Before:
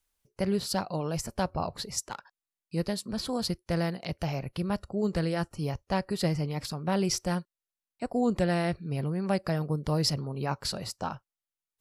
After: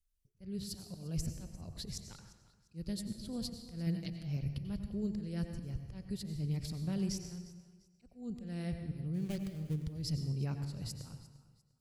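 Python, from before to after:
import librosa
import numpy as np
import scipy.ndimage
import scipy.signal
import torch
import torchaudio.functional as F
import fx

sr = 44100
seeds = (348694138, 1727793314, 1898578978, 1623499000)

y = fx.dead_time(x, sr, dead_ms=0.24, at=(9.13, 9.82), fade=0.02)
y = fx.rider(y, sr, range_db=3, speed_s=0.5)
y = fx.tone_stack(y, sr, knobs='10-0-1')
y = fx.auto_swell(y, sr, attack_ms=237.0)
y = fx.comb(y, sr, ms=6.4, depth=0.84, at=(3.86, 4.37))
y = fx.echo_feedback(y, sr, ms=349, feedback_pct=29, wet_db=-19.0)
y = fx.rev_plate(y, sr, seeds[0], rt60_s=1.1, hf_ratio=0.75, predelay_ms=80, drr_db=7.0)
y = y * librosa.db_to_amplitude(11.0)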